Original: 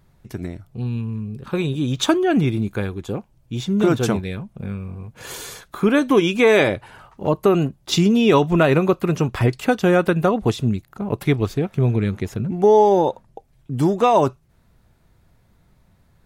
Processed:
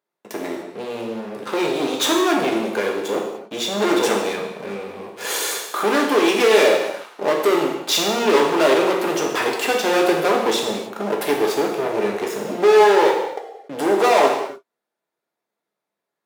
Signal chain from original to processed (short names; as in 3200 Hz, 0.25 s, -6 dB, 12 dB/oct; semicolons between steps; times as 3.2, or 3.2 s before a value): sample leveller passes 5; ladder high-pass 310 Hz, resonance 25%; non-linear reverb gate 0.32 s falling, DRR -0.5 dB; gain -4.5 dB